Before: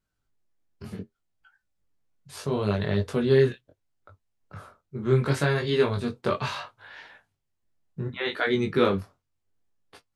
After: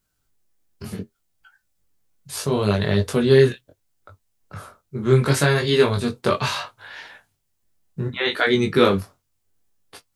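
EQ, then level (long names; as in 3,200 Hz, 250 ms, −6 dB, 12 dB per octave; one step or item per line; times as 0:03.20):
high-shelf EQ 5,400 Hz +11 dB
+5.5 dB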